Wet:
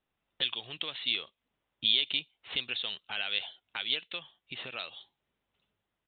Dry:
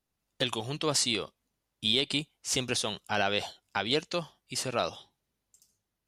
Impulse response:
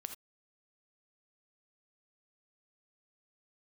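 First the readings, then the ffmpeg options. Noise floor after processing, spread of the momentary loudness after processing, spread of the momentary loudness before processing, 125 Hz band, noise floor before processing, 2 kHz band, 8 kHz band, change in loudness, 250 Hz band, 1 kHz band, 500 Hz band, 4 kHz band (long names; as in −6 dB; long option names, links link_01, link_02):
below −85 dBFS, 15 LU, 9 LU, −17.0 dB, −84 dBFS, −2.0 dB, below −40 dB, −2.0 dB, −15.5 dB, −13.0 dB, −16.0 dB, +0.5 dB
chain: -filter_complex "[0:a]lowshelf=frequency=300:gain=-8,acrossover=split=2300[link_01][link_02];[link_01]acompressor=threshold=-50dB:ratio=6[link_03];[link_03][link_02]amix=inputs=2:normalize=0,aresample=8000,aresample=44100,volume=4dB"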